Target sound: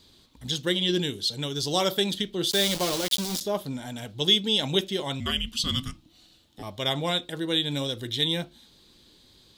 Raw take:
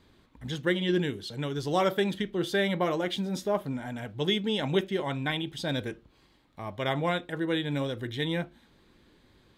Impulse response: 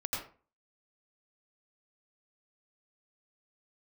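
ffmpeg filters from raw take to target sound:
-filter_complex "[0:a]asettb=1/sr,asplit=3[link_01][link_02][link_03];[link_01]atrim=end=2.514[link_04];[link_02]atrim=start=2.51:end=3.41,asetpts=PTS-STARTPTS,afade=type=in:duration=0.004:curve=qsin,afade=type=out:start_time=0.896:duration=0.004:curve=qsin,aeval=exprs='val(0)*gte(abs(val(0)),0.0266)':channel_layout=same[link_05];[link_03]atrim=start=3.406[link_06];[link_04][link_05]acrossfade=duration=0.004:curve1=hsin:curve2=qsin[link_07];[link_07][link_06]acrossfade=duration=0.004:curve1=qsin:curve2=hsin,asettb=1/sr,asplit=3[link_08][link_09][link_10];[link_08]atrim=end=5.204[link_11];[link_09]atrim=start=5.2:end=6.63,asetpts=PTS-STARTPTS,afade=type=in:duration=0.004:curve=qsin,afade=type=out:start_time=1.426:duration=0.004:curve=qsin,afreqshift=-370[link_12];[link_10]atrim=start=6.626[link_13];[link_11][link_12]acrossfade=duration=0.004:curve1=hsin:curve2=qsin[link_14];[link_14][link_13]acrossfade=duration=0.004:curve1=qsin:curve2=hsin,highshelf=frequency=2800:width_type=q:width=1.5:gain=11.5"

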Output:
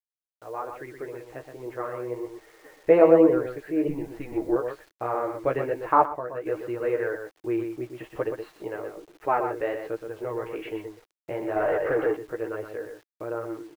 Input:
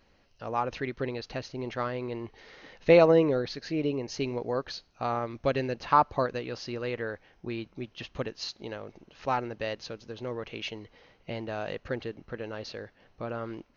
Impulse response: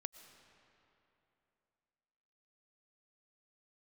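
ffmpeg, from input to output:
-filter_complex "[0:a]flanger=delay=8.4:depth=8.2:regen=17:speed=1.2:shape=sinusoidal,agate=range=-12dB:threshold=-54dB:ratio=16:detection=peak,aecho=1:1:6.5:0.32,asplit=2[link_01][link_02];[link_02]adelay=122.4,volume=-7dB,highshelf=frequency=4000:gain=-2.76[link_03];[link_01][link_03]amix=inputs=2:normalize=0,dynaudnorm=framelen=850:gausssize=5:maxgain=9.5dB,asettb=1/sr,asplit=3[link_04][link_05][link_06];[link_04]atrim=end=11.564[link_07];[link_05]atrim=start=11.56:end=12.17,asetpts=PTS-STARTPTS,afade=type=in:duration=0.004:curve=qsin,afade=type=out:start_time=0.606:duration=0.004:curve=qsin,asplit=2[link_08][link_09];[link_09]highpass=frequency=720:poles=1,volume=25dB,asoftclip=type=tanh:threshold=-14dB[link_10];[link_08][link_10]amix=inputs=2:normalize=0,lowpass=frequency=1100:poles=1,volume=-6dB[link_11];[link_06]atrim=start=12.166[link_12];[link_07][link_11]acrossfade=duration=0.004:curve1=hsin:curve2=qsin[link_13];[link_13][link_12]acrossfade=duration=0.004:curve1=qsin:curve2=hsin,lowpass=frequency=2000:width=0.5412,lowpass=frequency=2000:width=1.3066,acrusher=bits=8:mix=0:aa=0.000001,asettb=1/sr,asplit=3[link_14][link_15][link_16];[link_14]atrim=end=3.884[link_17];[link_15]atrim=start=3.88:end=4.56,asetpts=PTS-STARTPTS,afade=type=in:duration=0.004:curve=qsin,afade=type=out:start_time=0.676:duration=0.004:curve=qsin,afreqshift=-140[link_18];[link_16]atrim=start=4.556[link_19];[link_17][link_18]acrossfade=duration=0.004:curve1=hsin:curve2=qsin[link_20];[link_20][link_19]acrossfade=duration=0.004:curve1=qsin:curve2=hsin,asettb=1/sr,asplit=3[link_21][link_22][link_23];[link_21]atrim=end=6.044[link_24];[link_22]atrim=start=6.04:end=6.46,asetpts=PTS-STARTPTS,afade=type=in:duration=0.004:curve=qsin,afade=type=out:start_time=0.416:duration=0.004:curve=qsin,acompressor=threshold=-31dB:ratio=3[link_25];[link_23]atrim=start=6.456[link_26];[link_24][link_25]acrossfade=duration=0.004:curve1=hsin:curve2=qsin[link_27];[link_27][link_26]acrossfade=duration=0.004:curve1=qsin:curve2=hsin,lowshelf=frequency=280:width_type=q:width=3:gain=-6,volume=-2.5dB"

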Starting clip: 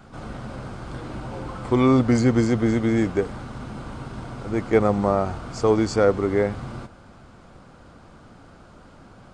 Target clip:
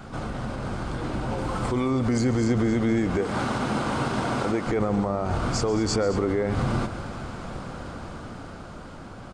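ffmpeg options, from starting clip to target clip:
ffmpeg -i in.wav -filter_complex "[0:a]asettb=1/sr,asplit=3[link_01][link_02][link_03];[link_01]atrim=end=1.384[link_04];[link_02]atrim=start=1.38:end=2.44,asetpts=PTS-STARTPTS,afade=type=in:duration=0.004:curve=qsin,afade=type=out:start_time=1.056:duration=0.004:curve=qsin,highshelf=frequency=7900:gain=8.5[link_05];[link_03]atrim=start=2.436[link_06];[link_04][link_05]acrossfade=duration=0.004:curve1=hsin:curve2=qsin[link_07];[link_07][link_06]acrossfade=duration=0.004:curve1=qsin:curve2=hsin,asettb=1/sr,asplit=3[link_08][link_09][link_10];[link_08]atrim=end=3.174[link_11];[link_09]atrim=start=3.17:end=4.67,asetpts=PTS-STARTPTS,afade=type=in:duration=0.004:curve=qsin,afade=type=out:start_time=1.496:duration=0.004:curve=qsin,highpass=frequency=270:poles=1[link_12];[link_10]atrim=start=4.666[link_13];[link_11][link_12]acrossfade=duration=0.004:curve1=hsin:curve2=qsin[link_14];[link_14][link_13]acrossfade=duration=0.004:curve1=qsin:curve2=hsin,alimiter=level_in=4.5dB:limit=-24dB:level=0:latency=1:release=204,volume=-4.5dB,dynaudnorm=framelen=360:gausssize=9:maxgain=6.5dB,asplit=2[link_15][link_16];[link_16]aecho=0:1:140|218:0.15|0.178[link_17];[link_15][link_17]amix=inputs=2:normalize=0,volume=6.5dB" out.wav

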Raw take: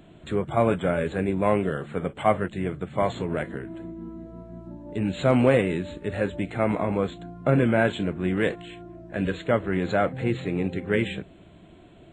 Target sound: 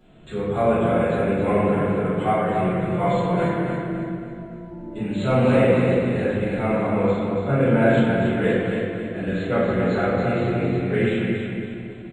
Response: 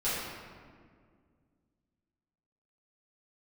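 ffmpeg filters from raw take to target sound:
-filter_complex "[0:a]asettb=1/sr,asplit=3[link_01][link_02][link_03];[link_01]atrim=end=2.544[link_04];[link_02]atrim=start=2.54:end=4.97,asetpts=PTS-STARTPTS,afade=type=in:duration=0.004:curve=qsin,afade=type=out:start_time=2.426:duration=0.004:curve=qsin,aecho=1:1:5.8:0.81,atrim=end_sample=107163[link_05];[link_03]atrim=start=4.966[link_06];[link_04][link_05]acrossfade=duration=0.004:curve1=hsin:curve2=qsin[link_07];[link_07][link_06]acrossfade=duration=0.004:curve1=qsin:curve2=hsin,aecho=1:1:278|556|834|1112|1390:0.501|0.21|0.0884|0.0371|0.0156[link_08];[1:a]atrim=start_sample=2205[link_09];[link_08][link_09]afir=irnorm=-1:irlink=0,volume=-7dB"

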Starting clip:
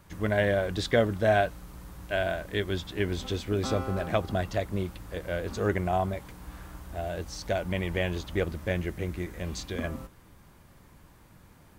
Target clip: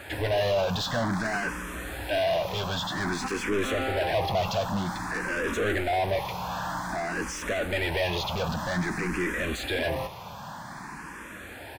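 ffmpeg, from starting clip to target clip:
ffmpeg -i in.wav -filter_complex "[0:a]aecho=1:1:1.2:0.33,asplit=2[link_01][link_02];[link_02]highpass=frequency=720:poles=1,volume=38dB,asoftclip=type=tanh:threshold=-10.5dB[link_03];[link_01][link_03]amix=inputs=2:normalize=0,lowpass=frequency=2500:poles=1,volume=-6dB,asplit=2[link_04][link_05];[link_05]afreqshift=0.52[link_06];[link_04][link_06]amix=inputs=2:normalize=1,volume=-6dB" out.wav

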